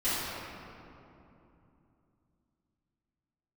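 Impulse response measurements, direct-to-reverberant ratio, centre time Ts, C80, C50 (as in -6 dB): -16.0 dB, 0.185 s, -2.0 dB, -4.5 dB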